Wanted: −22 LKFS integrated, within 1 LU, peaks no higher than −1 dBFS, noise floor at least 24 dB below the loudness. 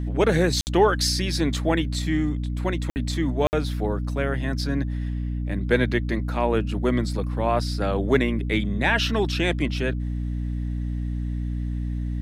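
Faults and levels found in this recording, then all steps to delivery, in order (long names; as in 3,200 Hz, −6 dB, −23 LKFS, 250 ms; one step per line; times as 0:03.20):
number of dropouts 3; longest dropout 59 ms; mains hum 60 Hz; hum harmonics up to 300 Hz; level of the hum −25 dBFS; integrated loudness −24.5 LKFS; sample peak −7.5 dBFS; target loudness −22.0 LKFS
→ repair the gap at 0:00.61/0:02.90/0:03.47, 59 ms
mains-hum notches 60/120/180/240/300 Hz
level +2.5 dB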